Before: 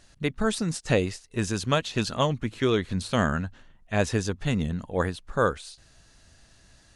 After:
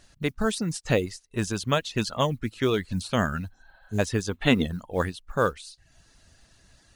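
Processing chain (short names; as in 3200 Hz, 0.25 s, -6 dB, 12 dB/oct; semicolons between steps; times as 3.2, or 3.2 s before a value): spectral repair 3.53–3.96, 510–5200 Hz before; modulation noise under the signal 31 dB; reverb removal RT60 0.55 s; spectral gain 4.32–4.67, 230–4200 Hz +10 dB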